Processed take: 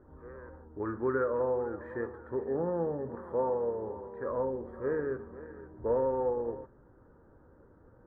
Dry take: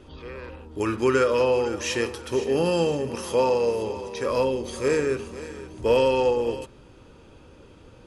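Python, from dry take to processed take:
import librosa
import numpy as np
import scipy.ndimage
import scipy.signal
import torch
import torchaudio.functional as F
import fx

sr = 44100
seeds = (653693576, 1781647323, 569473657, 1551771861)

y = scipy.signal.sosfilt(scipy.signal.ellip(4, 1.0, 40, 1700.0, 'lowpass', fs=sr, output='sos'), x)
y = y * librosa.db_to_amplitude(-8.5)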